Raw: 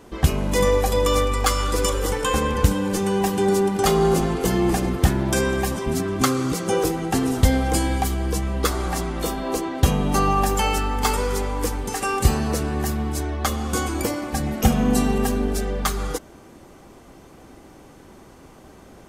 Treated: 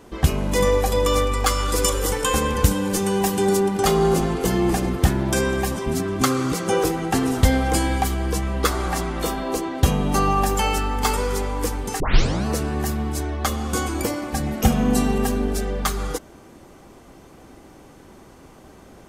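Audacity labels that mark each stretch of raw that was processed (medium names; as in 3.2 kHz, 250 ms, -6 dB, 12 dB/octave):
1.680000	3.570000	treble shelf 5.1 kHz +6.5 dB
6.300000	9.440000	peaking EQ 1.5 kHz +3 dB 2.3 oct
12.000000	12.000000	tape start 0.46 s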